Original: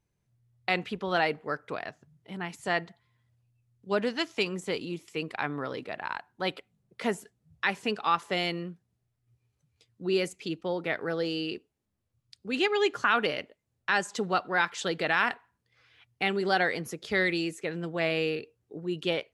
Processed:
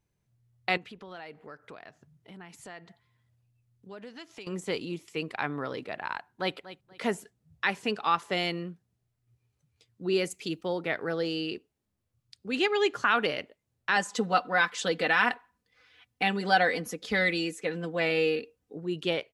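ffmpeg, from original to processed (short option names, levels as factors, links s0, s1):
-filter_complex "[0:a]asettb=1/sr,asplit=3[s0][s1][s2];[s0]atrim=end=0.774[s3];[s1]atrim=start=0.77:end=4.47,asetpts=PTS-STARTPTS,afade=t=in:d=0.004:c=qsin,afade=t=out:st=3.696:d=0.004:c=qsin,acompressor=threshold=0.00501:ratio=3:attack=3.2:release=140:knee=1:detection=peak[s4];[s2]atrim=start=4.466[s5];[s3][s4]acrossfade=d=0.004:c1=hsin:c2=qsin[s6];[s6][s5]acrossfade=d=0.004:c1=qsin:c2=hsin,asplit=2[s7][s8];[s8]afade=t=in:st=6.15:d=0.01,afade=t=out:st=6.56:d=0.01,aecho=0:1:240|480|720:0.177828|0.044457|0.0111142[s9];[s7][s9]amix=inputs=2:normalize=0,asettb=1/sr,asplit=3[s10][s11][s12];[s10]atrim=end=10.304[s13];[s11]atrim=start=10.3:end=10.79,asetpts=PTS-STARTPTS,afade=t=in:d=0.004:c=qsin,afade=t=out:st=0.486:d=0.004:c=qsin,highshelf=f=7500:g=11.5[s14];[s12]atrim=start=10.786[s15];[s13][s14]acrossfade=d=0.004:c1=hsin:c2=qsin[s16];[s16][s15]acrossfade=d=0.004:c1=qsin:c2=hsin,asettb=1/sr,asplit=3[s17][s18][s19];[s17]atrim=end=13.964[s20];[s18]atrim=start=13.96:end=18.75,asetpts=PTS-STARTPTS,afade=t=in:d=0.004:c=qsin,afade=t=out:st=4.786:d=0.004:c=qsin,aecho=1:1:4:0.69,atrim=end_sample=211239[s21];[s19]atrim=start=18.746[s22];[s20][s21]acrossfade=d=0.004:c1=hsin:c2=qsin[s23];[s23][s22]acrossfade=d=0.004:c1=qsin:c2=hsin"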